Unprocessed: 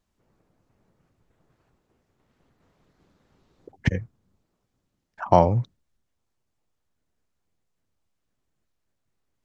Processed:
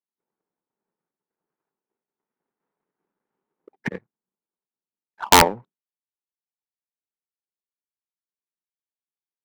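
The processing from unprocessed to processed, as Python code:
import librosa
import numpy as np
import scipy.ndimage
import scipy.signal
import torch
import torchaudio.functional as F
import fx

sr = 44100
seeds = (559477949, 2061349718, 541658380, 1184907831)

y = fx.cabinet(x, sr, low_hz=190.0, low_slope=24, high_hz=2400.0, hz=(270.0, 410.0, 620.0, 900.0, 1500.0), db=(-3, 5, -3, 7, 3))
y = fx.power_curve(y, sr, exponent=1.4)
y = (np.mod(10.0 ** (8.0 / 20.0) * y + 1.0, 2.0) - 1.0) / 10.0 ** (8.0 / 20.0)
y = y * 10.0 ** (7.0 / 20.0)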